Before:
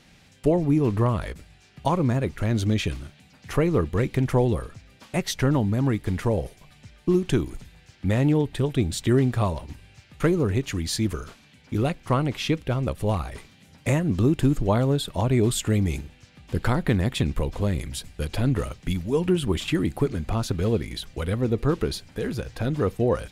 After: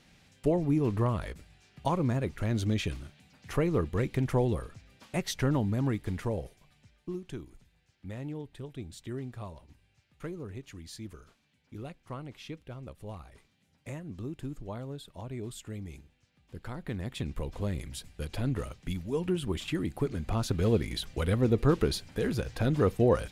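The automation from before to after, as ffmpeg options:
-af "volume=10.5dB,afade=t=out:st=5.79:d=1.43:silence=0.251189,afade=t=in:st=16.67:d=0.98:silence=0.316228,afade=t=in:st=19.93:d=0.96:silence=0.473151"

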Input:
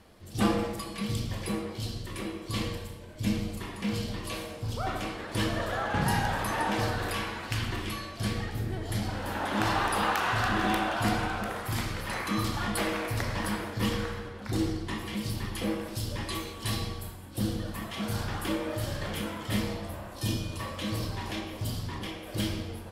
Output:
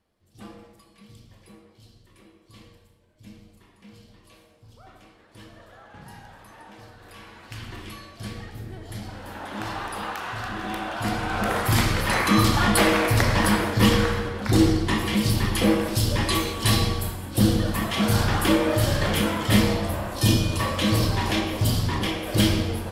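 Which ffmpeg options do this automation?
-af "volume=11dB,afade=t=in:st=7:d=0.81:silence=0.223872,afade=t=in:st=10.66:d=0.59:silence=0.473151,afade=t=in:st=11.25:d=0.31:silence=0.354813"

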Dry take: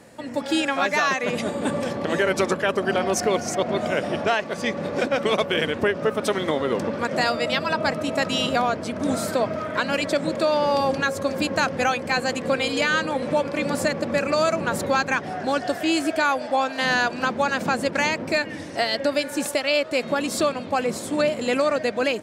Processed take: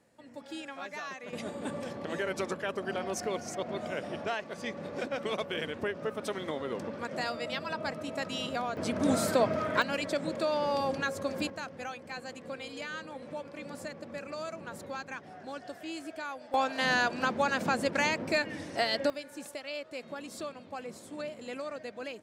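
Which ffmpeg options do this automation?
-af "asetnsamples=n=441:p=0,asendcmd='1.33 volume volume -12dB;8.77 volume volume -3dB;9.82 volume volume -9dB;11.5 volume volume -18dB;16.54 volume volume -6dB;19.1 volume volume -17.5dB',volume=-19dB"

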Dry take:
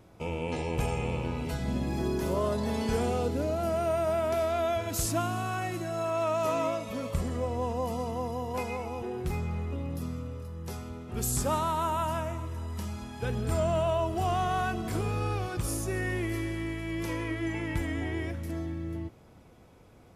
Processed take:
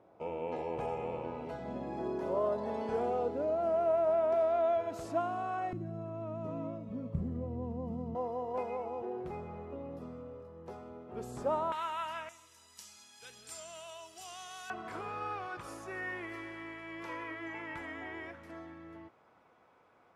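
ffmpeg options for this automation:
-af "asetnsamples=n=441:p=0,asendcmd='5.73 bandpass f 170;8.15 bandpass f 600;11.72 bandpass f 2200;12.29 bandpass f 6400;14.7 bandpass f 1200',bandpass=f=660:t=q:w=1.2:csg=0"

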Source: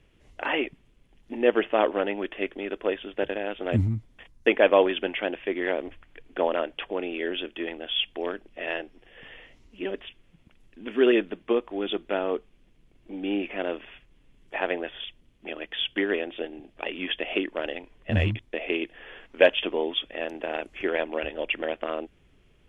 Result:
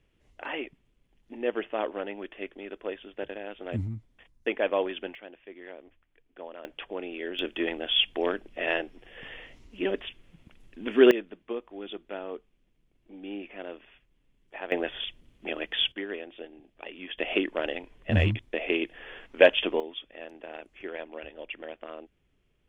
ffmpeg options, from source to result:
-af "asetnsamples=n=441:p=0,asendcmd='5.15 volume volume -17.5dB;6.65 volume volume -5.5dB;7.39 volume volume 3dB;11.11 volume volume -10dB;14.72 volume volume 2.5dB;15.92 volume volume -9.5dB;17.18 volume volume 0.5dB;19.8 volume volume -11dB',volume=-8dB"

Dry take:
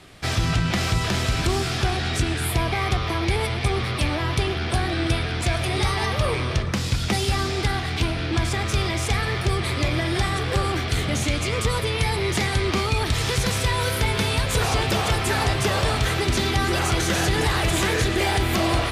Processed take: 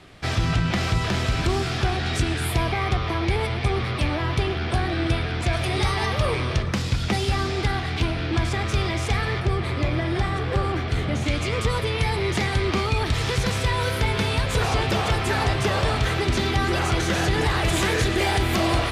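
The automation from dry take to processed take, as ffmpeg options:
-af "asetnsamples=n=441:p=0,asendcmd='2.06 lowpass f 7600;2.72 lowpass f 3400;5.53 lowpass f 7100;6.82 lowpass f 4100;9.4 lowpass f 1800;11.26 lowpass f 4200;17.65 lowpass f 9400',lowpass=f=4.1k:p=1"

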